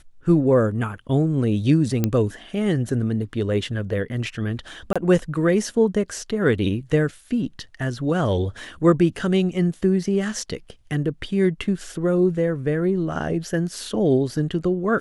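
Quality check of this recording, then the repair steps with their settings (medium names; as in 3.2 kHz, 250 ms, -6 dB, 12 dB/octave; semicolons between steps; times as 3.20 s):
2.04 s: pop -7 dBFS
4.93–4.96 s: dropout 26 ms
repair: de-click; interpolate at 4.93 s, 26 ms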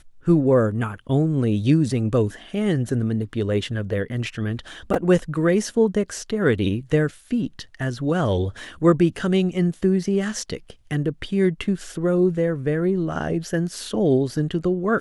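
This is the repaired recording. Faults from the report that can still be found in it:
nothing left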